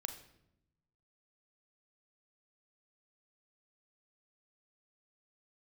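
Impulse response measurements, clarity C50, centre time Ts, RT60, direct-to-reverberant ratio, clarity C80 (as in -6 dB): 10.0 dB, 14 ms, 0.80 s, 6.5 dB, 13.0 dB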